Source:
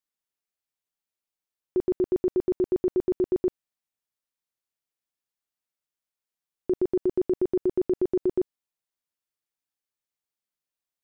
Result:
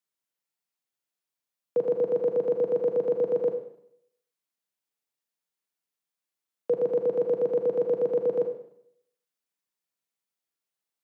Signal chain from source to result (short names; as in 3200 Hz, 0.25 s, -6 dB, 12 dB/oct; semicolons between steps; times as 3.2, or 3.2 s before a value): frequency shift +120 Hz; Schroeder reverb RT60 0.72 s, combs from 33 ms, DRR 5 dB